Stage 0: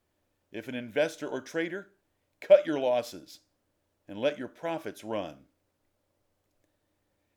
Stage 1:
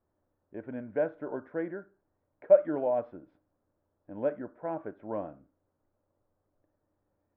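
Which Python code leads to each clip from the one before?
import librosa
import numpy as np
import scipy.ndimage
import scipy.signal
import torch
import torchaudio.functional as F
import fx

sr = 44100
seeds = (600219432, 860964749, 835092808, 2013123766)

y = scipy.signal.sosfilt(scipy.signal.butter(4, 1400.0, 'lowpass', fs=sr, output='sos'), x)
y = y * 10.0 ** (-1.5 / 20.0)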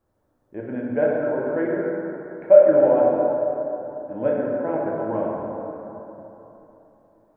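y = fx.rev_plate(x, sr, seeds[0], rt60_s=3.5, hf_ratio=0.4, predelay_ms=0, drr_db=-4.0)
y = y * 10.0 ** (5.5 / 20.0)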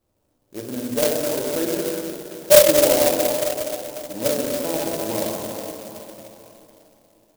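y = fx.clock_jitter(x, sr, seeds[1], jitter_ms=0.14)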